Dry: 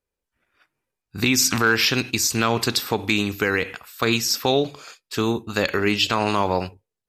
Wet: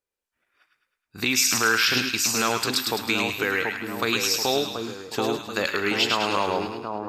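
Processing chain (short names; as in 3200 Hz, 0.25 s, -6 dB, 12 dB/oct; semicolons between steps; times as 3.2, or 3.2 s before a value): low shelf 220 Hz -11 dB; on a send: split-band echo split 1100 Hz, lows 0.732 s, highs 0.105 s, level -4 dB; on the sum: gain -2.5 dB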